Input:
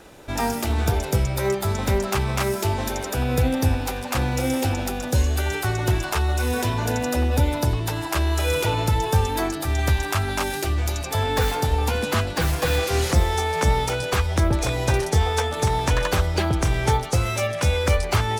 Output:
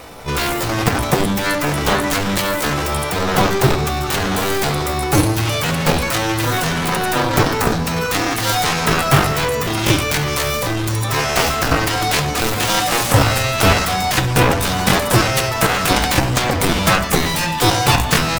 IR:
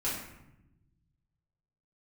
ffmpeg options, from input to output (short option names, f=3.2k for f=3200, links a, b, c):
-filter_complex "[0:a]asetrate=66075,aresample=44100,atempo=0.66742,aeval=exprs='0.422*(cos(1*acos(clip(val(0)/0.422,-1,1)))-cos(1*PI/2))+0.188*(cos(7*acos(clip(val(0)/0.422,-1,1)))-cos(7*PI/2))':c=same,asplit=2[a][b];[1:a]atrim=start_sample=2205[c];[b][c]afir=irnorm=-1:irlink=0,volume=-13.5dB[d];[a][d]amix=inputs=2:normalize=0,volume=2dB"